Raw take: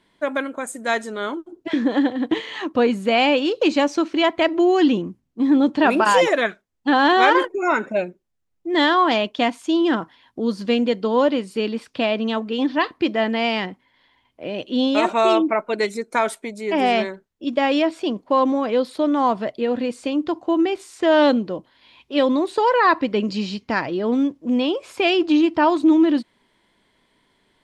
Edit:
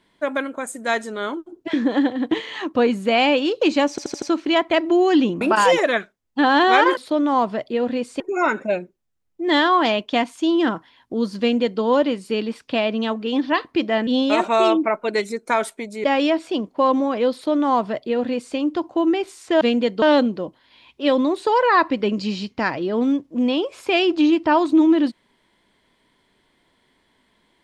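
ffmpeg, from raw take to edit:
-filter_complex "[0:a]asplit=12[a][b][c][d][e][f][g][h][i][j][k][l];[a]atrim=end=3.982[m];[b]atrim=start=3.898:end=3.982[n];[c]atrim=start=3.898:end=3.982[o];[d]atrim=start=3.898:end=3.982[p];[e]atrim=start=3.898:end=5.092[q];[f]atrim=start=5.898:end=7.462[r];[g]atrim=start=18.848:end=20.082[s];[h]atrim=start=7.458:end=13.332[t];[i]atrim=start=14.718:end=16.692[u];[j]atrim=start=17.558:end=21.132[v];[k]atrim=start=10.658:end=11.072[w];[l]atrim=start=21.128[x];[m][n]acrossfade=d=0.004:c1=hsin:c2=hsin[y];[y][o]acrossfade=d=0.004:c1=hsin:c2=hsin[z];[z][p]acrossfade=d=0.004:c1=hsin:c2=hsin[aa];[aa][q]acrossfade=d=0.004:c1=hsin:c2=hsin[ab];[ab][r]acrossfade=d=0.004:c1=hsin:c2=hsin[ac];[ac][s]acrossfade=d=0.004:c1=hsin:c2=hsin[ad];[ad][t]acrossfade=d=0.004:c1=hsin:c2=hsin[ae];[ae][u]acrossfade=d=0.004:c1=hsin:c2=hsin[af];[af][v]acrossfade=d=0.004:c1=hsin:c2=hsin[ag];[ag][w]acrossfade=d=0.004:c1=hsin:c2=hsin[ah];[ah][x]acrossfade=d=0.004:c1=hsin:c2=hsin"

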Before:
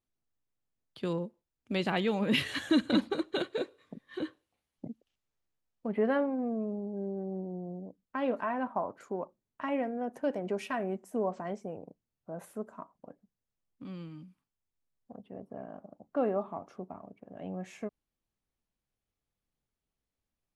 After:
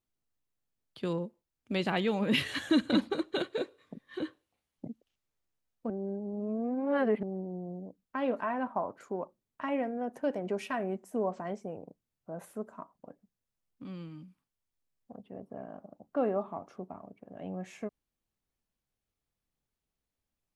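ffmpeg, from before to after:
-filter_complex "[0:a]asplit=3[a][b][c];[a]atrim=end=5.902[d];[b]atrim=start=5.898:end=7.232,asetpts=PTS-STARTPTS,areverse[e];[c]atrim=start=7.228[f];[d][e]acrossfade=d=0.004:c1=hsin:c2=hsin[g];[g][f]acrossfade=d=0.004:c1=hsin:c2=hsin"

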